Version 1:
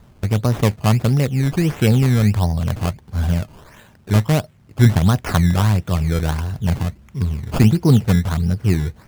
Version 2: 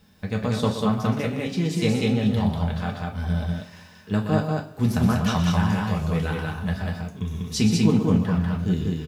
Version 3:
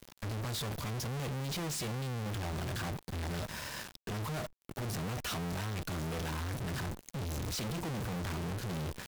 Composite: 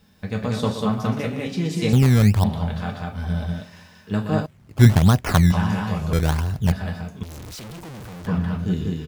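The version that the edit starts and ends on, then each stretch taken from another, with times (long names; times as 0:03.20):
2
0:01.93–0:02.44: punch in from 1
0:04.46–0:05.52: punch in from 1
0:06.13–0:06.72: punch in from 1
0:07.23–0:08.27: punch in from 3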